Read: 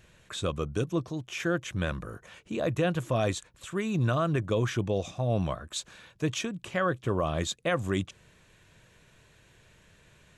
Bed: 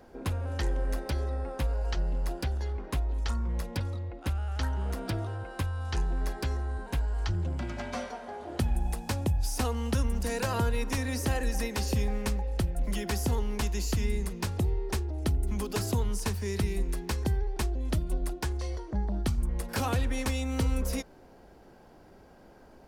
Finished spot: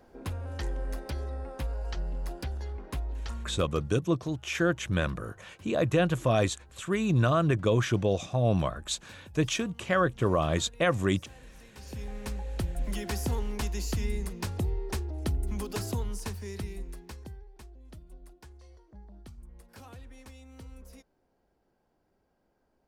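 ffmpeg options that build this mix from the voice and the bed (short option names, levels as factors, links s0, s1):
-filter_complex "[0:a]adelay=3150,volume=1.33[s0];[1:a]volume=6.68,afade=t=out:st=3.09:d=0.88:silence=0.11885,afade=t=in:st=11.7:d=1.02:silence=0.0944061,afade=t=out:st=15.58:d=1.88:silence=0.133352[s1];[s0][s1]amix=inputs=2:normalize=0"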